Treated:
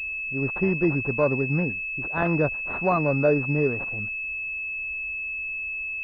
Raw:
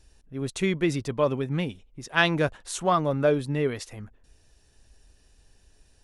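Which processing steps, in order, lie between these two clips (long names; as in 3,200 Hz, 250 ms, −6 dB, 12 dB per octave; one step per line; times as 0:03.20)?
in parallel at −2 dB: brickwall limiter −17.5 dBFS, peak gain reduction 11 dB
on the sum: switching amplifier with a slow clock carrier 2,600 Hz
level −2 dB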